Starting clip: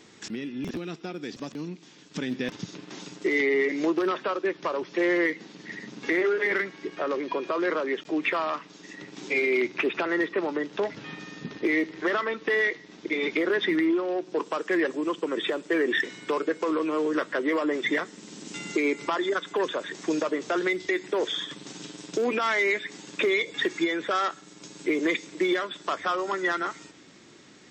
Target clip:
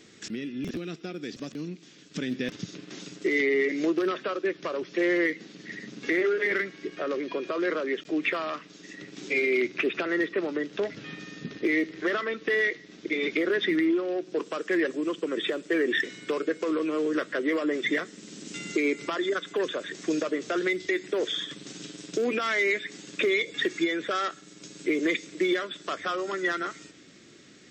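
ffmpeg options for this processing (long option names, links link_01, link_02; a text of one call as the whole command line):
ffmpeg -i in.wav -af "equalizer=frequency=910:width_type=o:width=0.57:gain=-11.5" out.wav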